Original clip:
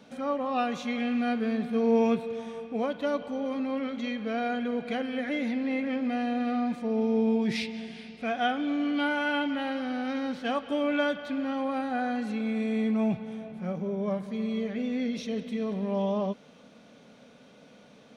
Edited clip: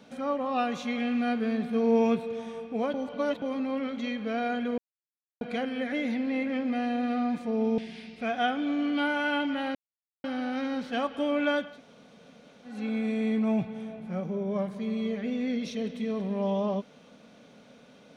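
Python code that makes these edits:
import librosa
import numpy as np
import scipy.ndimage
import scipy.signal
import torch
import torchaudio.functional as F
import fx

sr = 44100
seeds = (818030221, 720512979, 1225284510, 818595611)

y = fx.edit(x, sr, fx.reverse_span(start_s=2.94, length_s=0.48),
    fx.insert_silence(at_s=4.78, length_s=0.63),
    fx.cut(start_s=7.15, length_s=0.64),
    fx.insert_silence(at_s=9.76, length_s=0.49),
    fx.room_tone_fill(start_s=11.22, length_s=1.05, crossfade_s=0.24), tone=tone)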